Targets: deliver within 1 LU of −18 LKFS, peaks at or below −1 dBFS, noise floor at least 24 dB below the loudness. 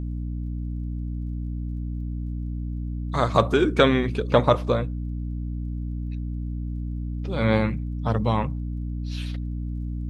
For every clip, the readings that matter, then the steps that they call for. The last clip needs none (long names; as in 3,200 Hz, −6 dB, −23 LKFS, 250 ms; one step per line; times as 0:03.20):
crackle rate 20 per second; mains hum 60 Hz; hum harmonics up to 300 Hz; level of the hum −27 dBFS; integrated loudness −26.0 LKFS; sample peak −3.5 dBFS; target loudness −18.0 LKFS
→ click removal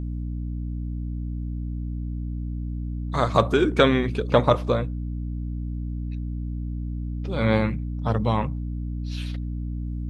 crackle rate 0 per second; mains hum 60 Hz; hum harmonics up to 300 Hz; level of the hum −27 dBFS
→ hum removal 60 Hz, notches 5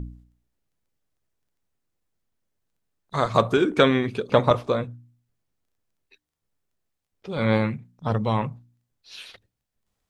mains hum none found; integrated loudness −23.5 LKFS; sample peak −3.5 dBFS; target loudness −18.0 LKFS
→ level +5.5 dB
brickwall limiter −1 dBFS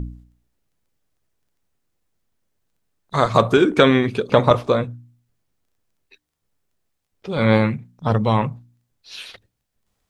integrated loudness −18.5 LKFS; sample peak −1.0 dBFS; background noise floor −77 dBFS